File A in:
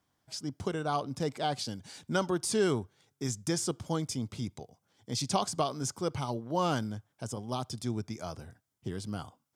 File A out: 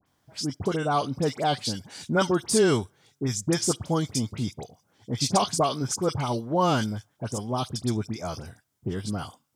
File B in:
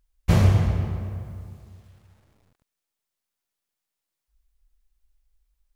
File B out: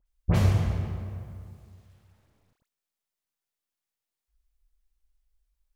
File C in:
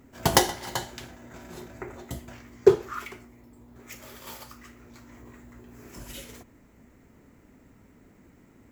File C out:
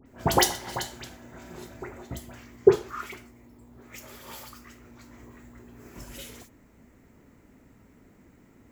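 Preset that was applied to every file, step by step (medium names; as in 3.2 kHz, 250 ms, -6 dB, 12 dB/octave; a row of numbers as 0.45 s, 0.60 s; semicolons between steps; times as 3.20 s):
phase dispersion highs, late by 62 ms, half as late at 1.9 kHz; normalise loudness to -27 LUFS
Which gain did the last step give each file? +7.0 dB, -4.5 dB, -0.5 dB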